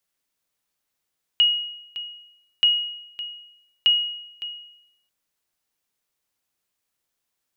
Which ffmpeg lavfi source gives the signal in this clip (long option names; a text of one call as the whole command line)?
ffmpeg -f lavfi -i "aevalsrc='0.282*(sin(2*PI*2890*mod(t,1.23))*exp(-6.91*mod(t,1.23)/0.82)+0.188*sin(2*PI*2890*max(mod(t,1.23)-0.56,0))*exp(-6.91*max(mod(t,1.23)-0.56,0)/0.82))':duration=3.69:sample_rate=44100" out.wav